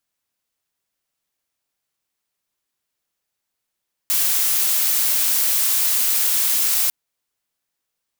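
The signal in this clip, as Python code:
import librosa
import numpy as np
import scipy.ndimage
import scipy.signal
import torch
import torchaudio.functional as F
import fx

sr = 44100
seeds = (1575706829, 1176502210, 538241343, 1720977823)

y = fx.noise_colour(sr, seeds[0], length_s=2.8, colour='blue', level_db=-18.5)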